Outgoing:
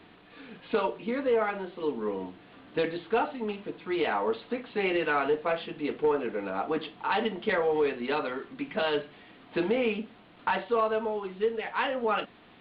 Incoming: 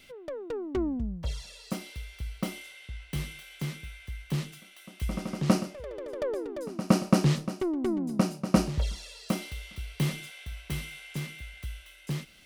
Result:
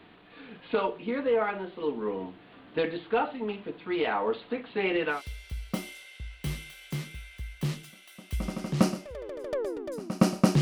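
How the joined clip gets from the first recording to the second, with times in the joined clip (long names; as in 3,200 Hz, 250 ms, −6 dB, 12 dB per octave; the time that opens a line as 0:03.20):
outgoing
0:05.15: continue with incoming from 0:01.84, crossfade 0.14 s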